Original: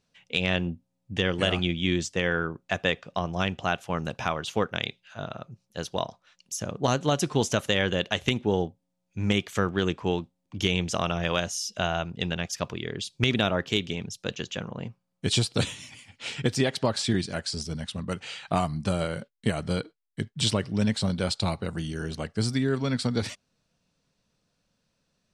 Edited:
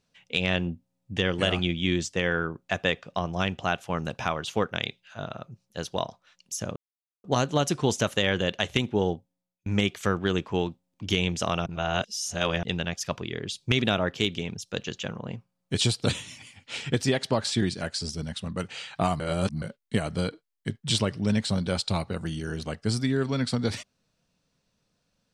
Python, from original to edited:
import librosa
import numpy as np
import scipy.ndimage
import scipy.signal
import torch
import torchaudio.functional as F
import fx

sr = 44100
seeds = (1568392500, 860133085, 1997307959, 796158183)

y = fx.edit(x, sr, fx.insert_silence(at_s=6.76, length_s=0.48),
    fx.fade_out_span(start_s=8.66, length_s=0.52),
    fx.reverse_span(start_s=11.18, length_s=0.97),
    fx.reverse_span(start_s=18.72, length_s=0.42), tone=tone)